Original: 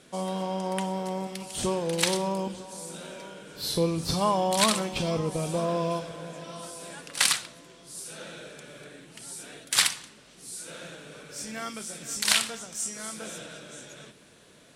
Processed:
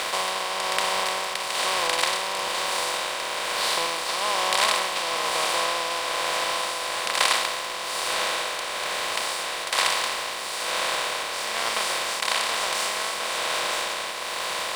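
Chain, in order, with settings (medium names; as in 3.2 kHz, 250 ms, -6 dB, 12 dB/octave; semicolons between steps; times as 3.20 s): spectral levelling over time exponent 0.2; high-pass 740 Hz 12 dB/octave; treble shelf 5.7 kHz -11.5 dB; crossover distortion -35 dBFS; tremolo 1.1 Hz, depth 37%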